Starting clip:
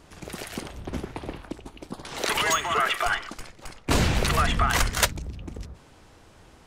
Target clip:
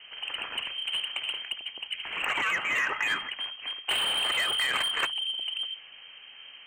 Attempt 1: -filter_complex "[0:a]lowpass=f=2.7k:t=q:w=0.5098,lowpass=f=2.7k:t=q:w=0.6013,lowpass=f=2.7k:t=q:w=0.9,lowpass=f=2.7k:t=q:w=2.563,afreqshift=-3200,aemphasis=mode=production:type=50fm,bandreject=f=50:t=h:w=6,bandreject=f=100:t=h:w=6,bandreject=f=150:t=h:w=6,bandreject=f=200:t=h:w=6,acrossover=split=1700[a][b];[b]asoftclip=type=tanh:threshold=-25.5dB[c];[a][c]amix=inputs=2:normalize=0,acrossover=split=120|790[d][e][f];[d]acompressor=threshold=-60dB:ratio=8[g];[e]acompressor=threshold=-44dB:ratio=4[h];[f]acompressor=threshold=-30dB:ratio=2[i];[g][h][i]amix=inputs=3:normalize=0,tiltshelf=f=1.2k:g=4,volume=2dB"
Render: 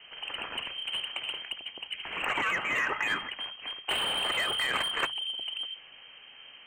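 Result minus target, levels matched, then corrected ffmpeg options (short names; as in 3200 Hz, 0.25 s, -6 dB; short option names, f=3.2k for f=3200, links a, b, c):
1000 Hz band +2.5 dB
-filter_complex "[0:a]lowpass=f=2.7k:t=q:w=0.5098,lowpass=f=2.7k:t=q:w=0.6013,lowpass=f=2.7k:t=q:w=0.9,lowpass=f=2.7k:t=q:w=2.563,afreqshift=-3200,aemphasis=mode=production:type=50fm,bandreject=f=50:t=h:w=6,bandreject=f=100:t=h:w=6,bandreject=f=150:t=h:w=6,bandreject=f=200:t=h:w=6,acrossover=split=1700[a][b];[b]asoftclip=type=tanh:threshold=-25.5dB[c];[a][c]amix=inputs=2:normalize=0,acrossover=split=120|790[d][e][f];[d]acompressor=threshold=-60dB:ratio=8[g];[e]acompressor=threshold=-44dB:ratio=4[h];[f]acompressor=threshold=-30dB:ratio=2[i];[g][h][i]amix=inputs=3:normalize=0,volume=2dB"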